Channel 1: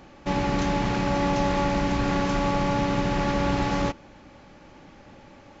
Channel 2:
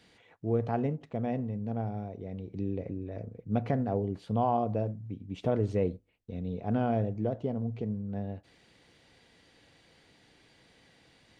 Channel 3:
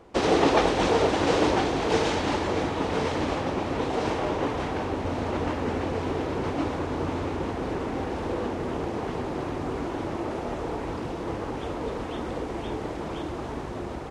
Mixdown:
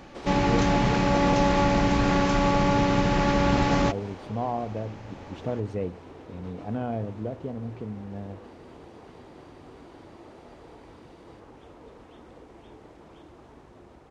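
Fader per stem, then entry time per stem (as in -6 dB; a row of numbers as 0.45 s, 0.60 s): +2.0 dB, -2.0 dB, -17.0 dB; 0.00 s, 0.00 s, 0.00 s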